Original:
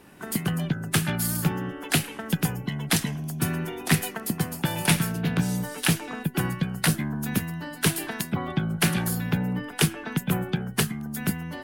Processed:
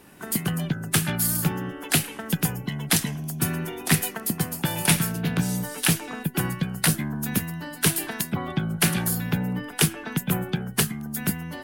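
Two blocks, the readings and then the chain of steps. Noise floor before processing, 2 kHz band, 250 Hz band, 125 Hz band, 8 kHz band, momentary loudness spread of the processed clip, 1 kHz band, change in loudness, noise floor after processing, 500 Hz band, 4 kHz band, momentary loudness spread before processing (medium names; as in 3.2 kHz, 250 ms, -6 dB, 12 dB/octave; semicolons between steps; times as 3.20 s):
-41 dBFS, +0.5 dB, 0.0 dB, 0.0 dB, +4.5 dB, 6 LU, 0.0 dB, +1.5 dB, -40 dBFS, 0.0 dB, +1.5 dB, 6 LU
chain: treble shelf 6.1 kHz +6 dB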